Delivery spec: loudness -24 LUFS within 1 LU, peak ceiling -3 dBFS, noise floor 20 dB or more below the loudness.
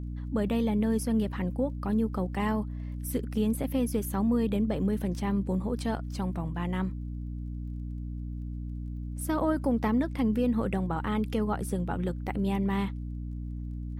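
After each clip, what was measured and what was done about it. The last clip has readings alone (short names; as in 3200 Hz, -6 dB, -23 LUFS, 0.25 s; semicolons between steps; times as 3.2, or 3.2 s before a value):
ticks 17/s; hum 60 Hz; harmonics up to 300 Hz; hum level -33 dBFS; loudness -30.5 LUFS; peak -16.0 dBFS; loudness target -24.0 LUFS
-> de-click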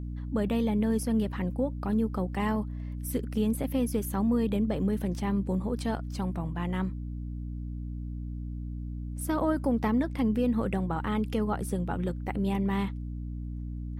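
ticks 0/s; hum 60 Hz; harmonics up to 300 Hz; hum level -33 dBFS
-> de-hum 60 Hz, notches 5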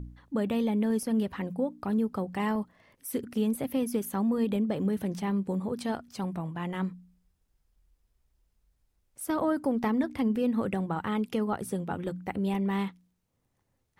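hum none; loudness -30.5 LUFS; peak -17.0 dBFS; loudness target -24.0 LUFS
-> gain +6.5 dB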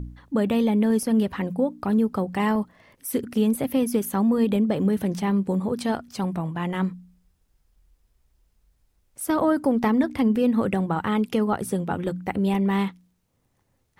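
loudness -24.0 LUFS; peak -10.5 dBFS; noise floor -70 dBFS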